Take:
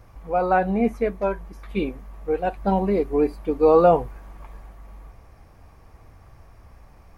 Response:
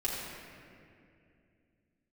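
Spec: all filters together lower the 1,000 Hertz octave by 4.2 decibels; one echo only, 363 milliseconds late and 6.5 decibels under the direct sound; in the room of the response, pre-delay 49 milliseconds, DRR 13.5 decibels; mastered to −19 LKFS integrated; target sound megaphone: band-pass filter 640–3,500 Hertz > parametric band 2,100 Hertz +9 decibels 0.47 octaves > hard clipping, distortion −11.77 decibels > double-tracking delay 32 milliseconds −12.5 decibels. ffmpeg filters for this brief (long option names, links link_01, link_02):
-filter_complex "[0:a]equalizer=frequency=1000:width_type=o:gain=-4.5,aecho=1:1:363:0.473,asplit=2[link_01][link_02];[1:a]atrim=start_sample=2205,adelay=49[link_03];[link_02][link_03]afir=irnorm=-1:irlink=0,volume=-19.5dB[link_04];[link_01][link_04]amix=inputs=2:normalize=0,highpass=640,lowpass=3500,equalizer=frequency=2100:width_type=o:width=0.47:gain=9,asoftclip=type=hard:threshold=-20dB,asplit=2[link_05][link_06];[link_06]adelay=32,volume=-12.5dB[link_07];[link_05][link_07]amix=inputs=2:normalize=0,volume=9.5dB"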